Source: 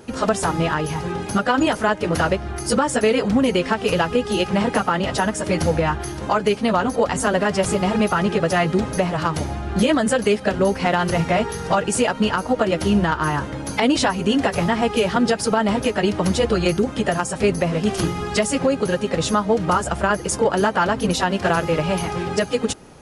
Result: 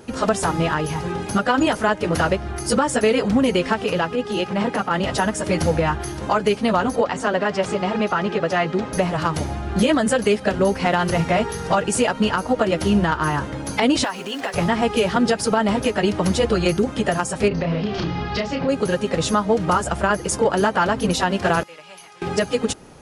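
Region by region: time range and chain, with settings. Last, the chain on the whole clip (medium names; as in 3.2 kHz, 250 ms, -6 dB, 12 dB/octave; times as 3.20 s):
3.84–4.91 s: high-pass 120 Hz + treble shelf 6.9 kHz -9 dB + transient shaper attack -8 dB, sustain -2 dB
7.01–8.93 s: high-pass 250 Hz 6 dB/octave + distance through air 97 m
14.04–14.54 s: compression 5:1, threshold -19 dBFS + companded quantiser 6-bit + frequency weighting A
17.48–18.69 s: steep low-pass 5 kHz + compression 4:1, threshold -20 dBFS + doubling 30 ms -5 dB
21.63–22.22 s: low-pass 2 kHz 6 dB/octave + differentiator
whole clip: none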